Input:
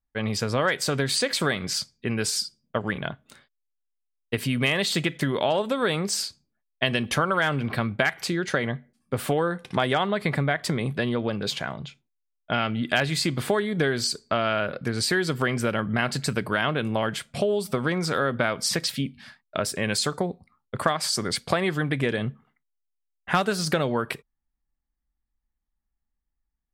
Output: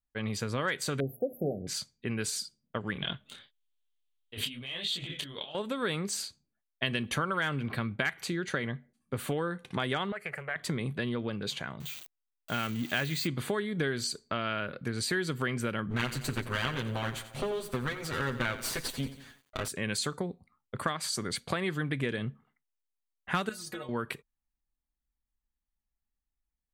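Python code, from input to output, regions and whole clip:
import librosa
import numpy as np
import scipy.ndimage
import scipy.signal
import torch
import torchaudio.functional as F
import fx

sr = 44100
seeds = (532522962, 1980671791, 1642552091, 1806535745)

y = fx.chain(x, sr, fx.brickwall_bandstop(low_hz=790.0, high_hz=11000.0),
    fx.peak_eq(hz=710.0, db=7.5, octaves=1.5),
    fx.hum_notches(base_hz=60, count=6), at=(1.0, 1.67))
y = fx.chain(y, sr, fx.over_compress(threshold_db=-33.0, ratio=-1.0),
    fx.peak_eq(hz=3300.0, db=14.5, octaves=0.7),
    fx.detune_double(cents=37), at=(2.99, 5.55))
y = fx.chain(y, sr, fx.highpass(hz=490.0, slope=6),
    fx.fixed_phaser(hz=1000.0, stages=6),
    fx.doppler_dist(depth_ms=0.23), at=(10.12, 10.56))
y = fx.chain(y, sr, fx.crossing_spikes(level_db=-21.5),
    fx.peak_eq(hz=11000.0, db=-13.0, octaves=1.1), at=(11.8, 13.27))
y = fx.chain(y, sr, fx.lower_of_two(delay_ms=7.8),
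    fx.echo_crushed(ms=89, feedback_pct=55, bits=8, wet_db=-13), at=(15.9, 19.68))
y = fx.chain(y, sr, fx.high_shelf(hz=5400.0, db=7.0),
    fx.stiff_resonator(f0_hz=110.0, decay_s=0.26, stiffness=0.008), at=(23.49, 23.89))
y = fx.notch(y, sr, hz=5200.0, q=6.6)
y = fx.dynamic_eq(y, sr, hz=690.0, q=1.8, threshold_db=-40.0, ratio=4.0, max_db=-7)
y = y * librosa.db_to_amplitude(-6.0)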